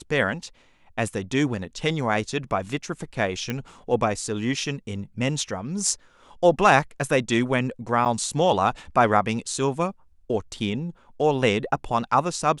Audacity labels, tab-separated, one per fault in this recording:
3.500000	3.500000	pop -14 dBFS
8.050000	8.060000	dropout 7.4 ms

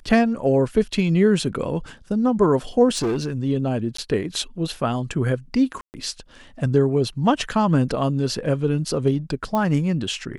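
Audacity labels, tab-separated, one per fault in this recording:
2.890000	3.320000	clipped -19 dBFS
3.970000	3.980000	dropout 14 ms
5.810000	5.940000	dropout 129 ms
9.550000	9.550000	pop -12 dBFS

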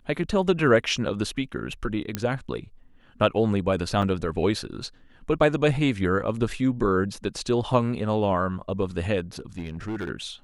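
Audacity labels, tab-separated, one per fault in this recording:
2.150000	2.150000	pop -11 dBFS
4.020000	4.030000	dropout 5.3 ms
9.390000	10.090000	clipped -26.5 dBFS

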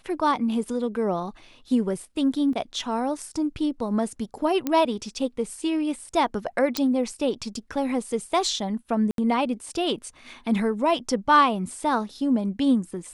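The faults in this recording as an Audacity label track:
2.530000	2.530000	dropout 2.7 ms
4.670000	4.670000	pop -12 dBFS
6.770000	6.770000	pop -9 dBFS
9.110000	9.180000	dropout 72 ms

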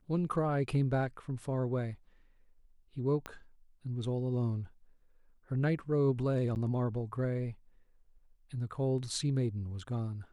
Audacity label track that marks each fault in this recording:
3.260000	3.260000	pop -24 dBFS
6.550000	6.560000	dropout 9.1 ms

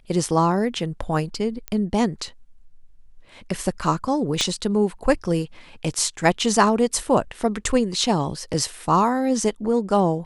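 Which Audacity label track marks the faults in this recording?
1.680000	1.680000	pop -13 dBFS
4.410000	4.410000	pop -9 dBFS

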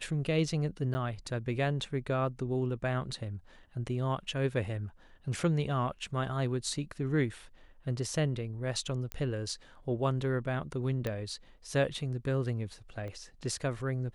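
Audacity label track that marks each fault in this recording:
0.940000	0.950000	dropout 10 ms
9.120000	9.120000	pop -20 dBFS
11.070000	11.070000	pop -20 dBFS
13.080000	13.080000	pop -31 dBFS

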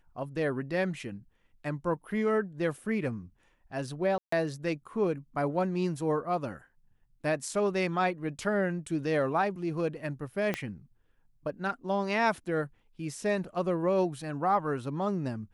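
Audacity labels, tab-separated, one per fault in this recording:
4.180000	4.320000	dropout 144 ms
10.540000	10.540000	pop -16 dBFS

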